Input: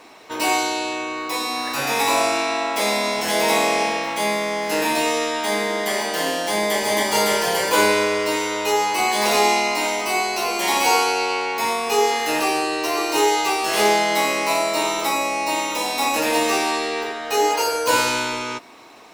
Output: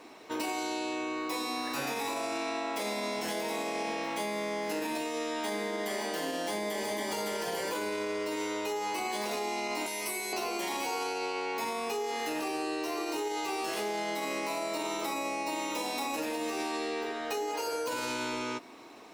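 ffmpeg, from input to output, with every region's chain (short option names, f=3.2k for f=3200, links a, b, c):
-filter_complex "[0:a]asettb=1/sr,asplit=3[a][b][c];[a]atrim=end=9.864[d];[b]atrim=start=9.86:end=10.33,asetpts=PTS-STARTPTS,afade=t=in:d=0.004:c=qsin,afade=t=out:st=0.466:d=0.004:c=qsin,equalizer=f=11k:t=o:w=0.66:g=15,acrossover=split=730|2000[e][f][g];[e]acompressor=threshold=-39dB:ratio=4[h];[f]acompressor=threshold=-38dB:ratio=4[i];[g]acompressor=threshold=-28dB:ratio=4[j];[h][i][j]amix=inputs=3:normalize=0,asplit=2[k][l];[l]adelay=14,volume=-2dB[m];[k][m]amix=inputs=2:normalize=0,atrim=end_sample=20727[n];[c]atrim=start=10.326[o];[d][n]acrossfade=d=0.004:c1=hsin:c2=qsin[p];[p][o]acrossfade=d=0.004:c1=qsin:c2=hsin,equalizer=f=300:t=o:w=1.4:g=6.5,alimiter=limit=-12dB:level=0:latency=1,acompressor=threshold=-23dB:ratio=6,volume=-7.5dB"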